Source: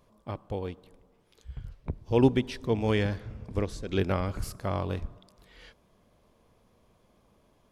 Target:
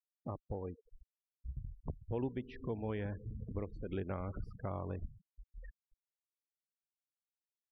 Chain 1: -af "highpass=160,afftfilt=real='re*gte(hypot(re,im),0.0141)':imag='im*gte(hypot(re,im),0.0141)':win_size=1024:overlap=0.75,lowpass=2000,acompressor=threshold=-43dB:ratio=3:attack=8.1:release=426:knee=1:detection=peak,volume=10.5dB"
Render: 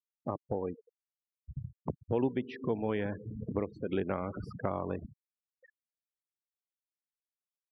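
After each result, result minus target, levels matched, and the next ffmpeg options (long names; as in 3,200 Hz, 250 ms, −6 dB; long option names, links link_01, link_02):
downward compressor: peak gain reduction −8.5 dB; 125 Hz band −4.5 dB
-af "highpass=160,afftfilt=real='re*gte(hypot(re,im),0.0141)':imag='im*gte(hypot(re,im),0.0141)':win_size=1024:overlap=0.75,lowpass=2000,acompressor=threshold=-54.5dB:ratio=3:attack=8.1:release=426:knee=1:detection=peak,volume=10.5dB"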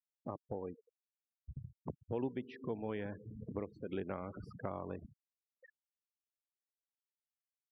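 125 Hz band −4.5 dB
-af "afftfilt=real='re*gte(hypot(re,im),0.0141)':imag='im*gte(hypot(re,im),0.0141)':win_size=1024:overlap=0.75,lowpass=2000,acompressor=threshold=-54.5dB:ratio=3:attack=8.1:release=426:knee=1:detection=peak,volume=10.5dB"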